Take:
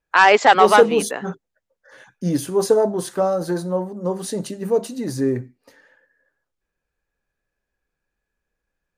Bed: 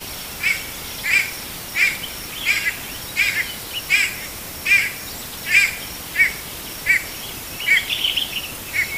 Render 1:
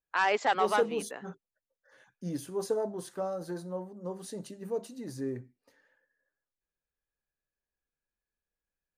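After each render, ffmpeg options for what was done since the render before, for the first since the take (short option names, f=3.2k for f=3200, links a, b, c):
-af "volume=-14.5dB"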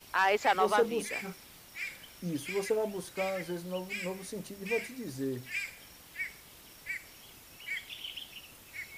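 -filter_complex "[1:a]volume=-22dB[a];[0:a][a]amix=inputs=2:normalize=0"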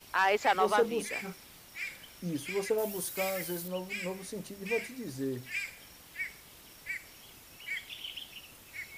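-filter_complex "[0:a]asettb=1/sr,asplit=3[a][b][c];[a]atrim=end=2.784[d];[b]atrim=start=2.78:end=3.68,asetpts=PTS-STARTPTS,afade=t=in:d=0.004:c=qsin,afade=t=out:st=0.896:d=0.004:c=qsin,aemphasis=mode=production:type=50fm[e];[c]atrim=start=3.676[f];[d][e]acrossfade=d=0.004:c1=hsin:c2=qsin[g];[g][f]acrossfade=d=0.004:c1=qsin:c2=hsin"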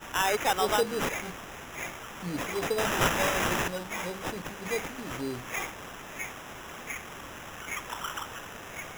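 -af "aexciter=amount=3.5:drive=4.2:freq=3.2k,acrusher=samples=10:mix=1:aa=0.000001"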